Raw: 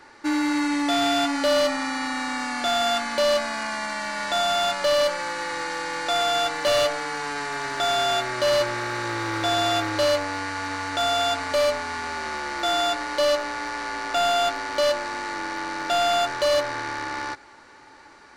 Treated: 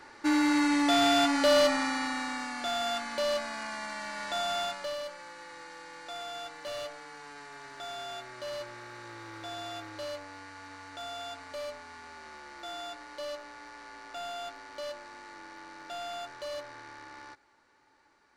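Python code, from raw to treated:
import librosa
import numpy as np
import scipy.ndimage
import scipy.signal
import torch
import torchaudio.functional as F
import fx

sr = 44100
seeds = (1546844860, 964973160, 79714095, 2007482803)

y = fx.gain(x, sr, db=fx.line((1.76, -2.0), (2.54, -9.0), (4.6, -9.0), (5.02, -17.5)))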